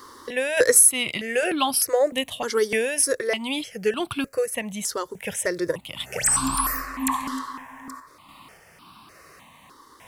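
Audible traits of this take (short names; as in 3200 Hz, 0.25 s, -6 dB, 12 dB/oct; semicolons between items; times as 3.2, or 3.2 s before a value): a quantiser's noise floor 12-bit, dither triangular; random-step tremolo; notches that jump at a steady rate 3.3 Hz 680–1900 Hz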